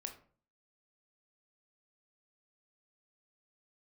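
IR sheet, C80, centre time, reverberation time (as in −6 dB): 15.5 dB, 13 ms, 0.45 s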